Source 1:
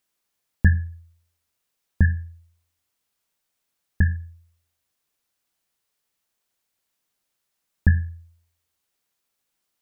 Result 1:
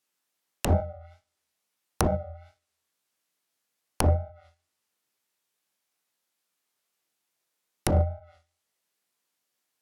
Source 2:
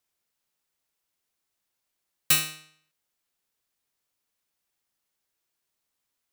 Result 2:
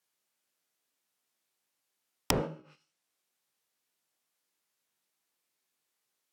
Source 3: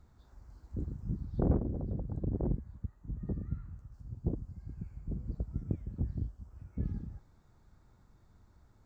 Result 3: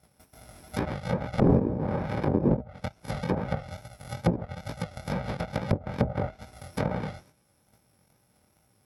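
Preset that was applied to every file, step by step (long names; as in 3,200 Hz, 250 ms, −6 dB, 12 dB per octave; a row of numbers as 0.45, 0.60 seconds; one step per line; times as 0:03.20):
samples in bit-reversed order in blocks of 64 samples
noise gate −57 dBFS, range −11 dB
high-pass filter 160 Hz 12 dB per octave
dynamic equaliser 570 Hz, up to +5 dB, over −49 dBFS, Q 1.5
in parallel at −1 dB: output level in coarse steps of 17 dB
on the sum: chorus effect 2.3 Hz, delay 16 ms, depth 7.7 ms
wrap-around overflow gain 18.5 dB
treble cut that deepens with the level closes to 480 Hz, closed at −33 dBFS
normalise the peak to −9 dBFS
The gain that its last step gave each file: +11.5, +12.0, +14.0 decibels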